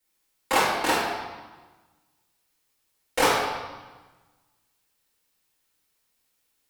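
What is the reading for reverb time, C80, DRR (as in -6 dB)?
1.3 s, 3.0 dB, -8.5 dB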